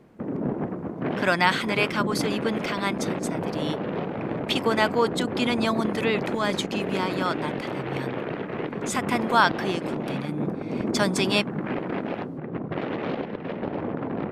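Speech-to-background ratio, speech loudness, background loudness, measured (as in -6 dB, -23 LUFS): 3.5 dB, -26.5 LUFS, -30.0 LUFS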